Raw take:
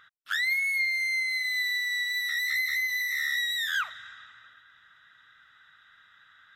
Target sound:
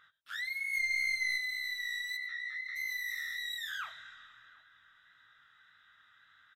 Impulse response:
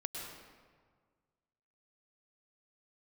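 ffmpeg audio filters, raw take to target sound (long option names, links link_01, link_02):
-filter_complex "[0:a]alimiter=level_in=1.5dB:limit=-24dB:level=0:latency=1:release=11,volume=-1.5dB,asplit=3[link_01][link_02][link_03];[link_01]afade=type=out:start_time=0.72:duration=0.02[link_04];[link_02]acontrast=62,afade=type=in:start_time=0.72:duration=0.02,afade=type=out:start_time=1.36:duration=0.02[link_05];[link_03]afade=type=in:start_time=1.36:duration=0.02[link_06];[link_04][link_05][link_06]amix=inputs=3:normalize=0,asoftclip=type=tanh:threshold=-21.5dB,flanger=delay=19:depth=5.9:speed=1.7,asplit=3[link_07][link_08][link_09];[link_07]afade=type=out:start_time=2.16:duration=0.02[link_10];[link_08]highpass=560,lowpass=2600,afade=type=in:start_time=2.16:duration=0.02,afade=type=out:start_time=2.75:duration=0.02[link_11];[link_09]afade=type=in:start_time=2.75:duration=0.02[link_12];[link_10][link_11][link_12]amix=inputs=3:normalize=0,asplit=2[link_13][link_14];[link_14]adelay=723,lowpass=frequency=810:poles=1,volume=-19dB,asplit=2[link_15][link_16];[link_16]adelay=723,lowpass=frequency=810:poles=1,volume=0.51,asplit=2[link_17][link_18];[link_18]adelay=723,lowpass=frequency=810:poles=1,volume=0.51,asplit=2[link_19][link_20];[link_20]adelay=723,lowpass=frequency=810:poles=1,volume=0.51[link_21];[link_13][link_15][link_17][link_19][link_21]amix=inputs=5:normalize=0[link_22];[1:a]atrim=start_sample=2205,atrim=end_sample=4410[link_23];[link_22][link_23]afir=irnorm=-1:irlink=0"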